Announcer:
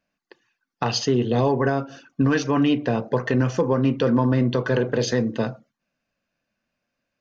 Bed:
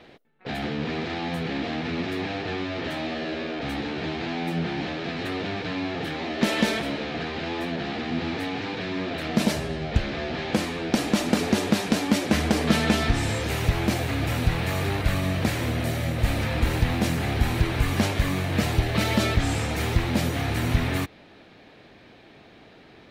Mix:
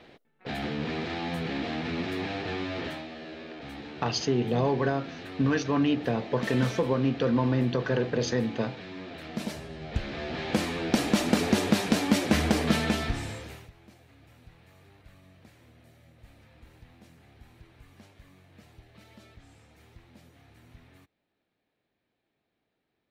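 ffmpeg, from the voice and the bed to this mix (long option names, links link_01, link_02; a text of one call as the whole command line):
ffmpeg -i stem1.wav -i stem2.wav -filter_complex "[0:a]adelay=3200,volume=-5.5dB[link_01];[1:a]volume=7dB,afade=type=out:start_time=2.81:duration=0.25:silence=0.375837,afade=type=in:start_time=9.71:duration=1.01:silence=0.316228,afade=type=out:start_time=12.44:duration=1.26:silence=0.0354813[link_02];[link_01][link_02]amix=inputs=2:normalize=0" out.wav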